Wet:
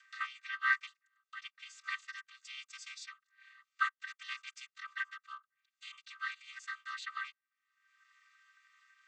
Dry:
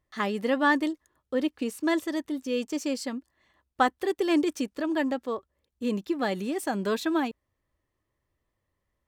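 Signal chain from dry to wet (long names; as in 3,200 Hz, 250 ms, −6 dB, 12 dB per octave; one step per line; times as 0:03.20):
channel vocoder with a chord as carrier minor triad, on C4
Butterworth high-pass 1,200 Hz 96 dB per octave
upward compression, threshold −49 dBFS
level +4.5 dB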